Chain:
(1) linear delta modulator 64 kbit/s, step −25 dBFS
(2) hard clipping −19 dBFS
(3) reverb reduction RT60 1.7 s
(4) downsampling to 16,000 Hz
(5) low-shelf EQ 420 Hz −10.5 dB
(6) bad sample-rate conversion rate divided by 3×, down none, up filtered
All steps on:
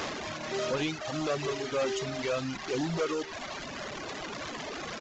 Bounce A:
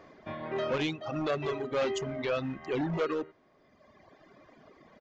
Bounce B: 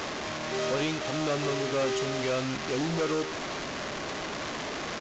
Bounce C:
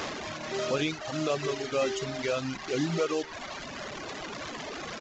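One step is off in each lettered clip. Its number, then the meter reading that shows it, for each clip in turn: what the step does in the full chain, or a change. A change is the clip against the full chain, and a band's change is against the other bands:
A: 1, 8 kHz band −9.0 dB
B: 3, change in integrated loudness +2.5 LU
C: 2, distortion level −14 dB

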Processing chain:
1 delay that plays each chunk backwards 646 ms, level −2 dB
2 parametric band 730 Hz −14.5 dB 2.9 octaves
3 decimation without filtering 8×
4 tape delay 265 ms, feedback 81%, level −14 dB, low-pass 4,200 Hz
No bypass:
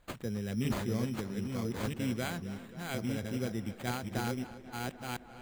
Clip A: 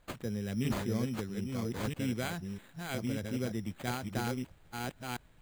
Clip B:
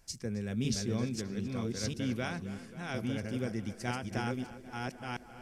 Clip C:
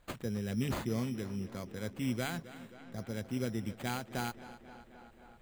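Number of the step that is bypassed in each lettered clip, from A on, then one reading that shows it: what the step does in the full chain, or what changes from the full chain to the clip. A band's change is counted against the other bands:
4, echo-to-direct ratio −25.5 dB to none audible
3, distortion level −7 dB
1, change in momentary loudness spread +11 LU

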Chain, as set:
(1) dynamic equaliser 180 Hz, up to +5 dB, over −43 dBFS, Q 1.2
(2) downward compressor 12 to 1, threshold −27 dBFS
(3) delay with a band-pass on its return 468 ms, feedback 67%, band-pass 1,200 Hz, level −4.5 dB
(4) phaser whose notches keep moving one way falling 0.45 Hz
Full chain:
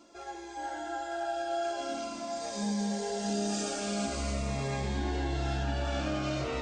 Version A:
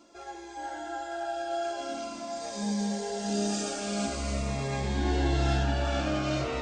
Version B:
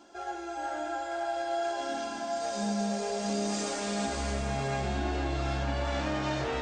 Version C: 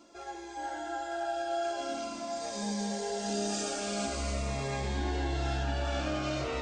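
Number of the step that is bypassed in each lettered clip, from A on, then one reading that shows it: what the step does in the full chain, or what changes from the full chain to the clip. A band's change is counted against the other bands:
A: 2, average gain reduction 1.5 dB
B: 4, 1 kHz band +2.5 dB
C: 1, 250 Hz band −2.5 dB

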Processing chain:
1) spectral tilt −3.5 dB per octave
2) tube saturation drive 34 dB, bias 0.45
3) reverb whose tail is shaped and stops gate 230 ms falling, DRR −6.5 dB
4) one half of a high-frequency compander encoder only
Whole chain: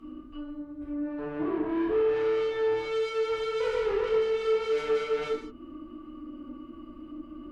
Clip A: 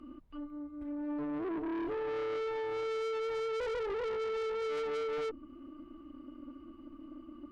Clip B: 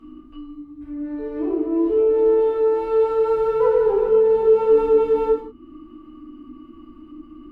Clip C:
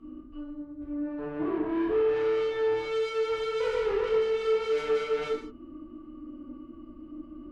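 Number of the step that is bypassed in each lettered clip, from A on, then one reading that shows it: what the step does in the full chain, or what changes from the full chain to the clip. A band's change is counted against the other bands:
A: 3, change in momentary loudness spread −2 LU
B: 2, change in momentary loudness spread −3 LU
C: 4, change in momentary loudness spread +1 LU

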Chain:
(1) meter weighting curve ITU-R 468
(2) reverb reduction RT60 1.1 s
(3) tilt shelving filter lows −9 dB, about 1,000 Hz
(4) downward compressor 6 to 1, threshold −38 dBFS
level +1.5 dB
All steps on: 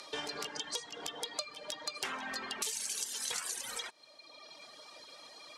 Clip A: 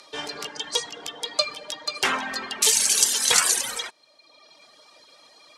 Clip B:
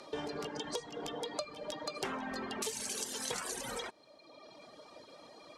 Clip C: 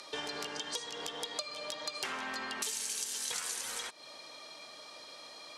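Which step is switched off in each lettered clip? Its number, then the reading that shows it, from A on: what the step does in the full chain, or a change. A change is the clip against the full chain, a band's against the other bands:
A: 4, average gain reduction 9.5 dB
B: 3, 125 Hz band +10.0 dB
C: 2, change in momentary loudness spread −2 LU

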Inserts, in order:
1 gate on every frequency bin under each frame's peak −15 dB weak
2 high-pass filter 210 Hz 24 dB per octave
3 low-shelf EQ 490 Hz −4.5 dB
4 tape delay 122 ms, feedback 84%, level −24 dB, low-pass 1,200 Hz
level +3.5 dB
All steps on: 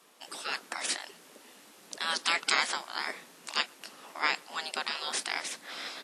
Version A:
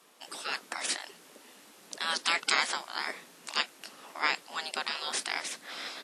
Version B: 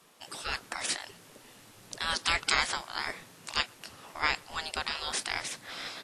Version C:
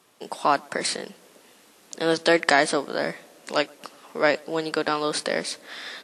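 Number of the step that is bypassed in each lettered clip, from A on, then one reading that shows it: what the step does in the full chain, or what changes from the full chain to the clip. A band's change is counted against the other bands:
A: 4, echo-to-direct ratio −32.5 dB to none audible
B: 2, change in momentary loudness spread +1 LU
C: 1, change in crest factor −2.0 dB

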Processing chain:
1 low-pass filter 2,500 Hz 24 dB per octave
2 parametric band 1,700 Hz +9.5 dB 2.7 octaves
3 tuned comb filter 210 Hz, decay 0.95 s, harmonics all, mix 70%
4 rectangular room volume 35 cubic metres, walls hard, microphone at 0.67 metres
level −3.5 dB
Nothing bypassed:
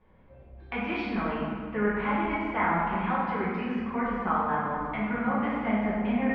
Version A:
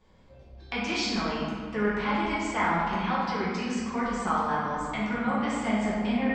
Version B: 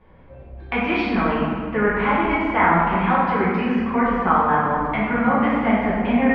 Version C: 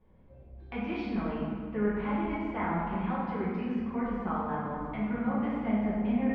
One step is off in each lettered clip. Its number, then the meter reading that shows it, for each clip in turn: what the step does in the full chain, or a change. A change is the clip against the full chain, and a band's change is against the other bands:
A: 1, 4 kHz band +11.0 dB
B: 3, change in integrated loudness +9.0 LU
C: 2, 2 kHz band −7.0 dB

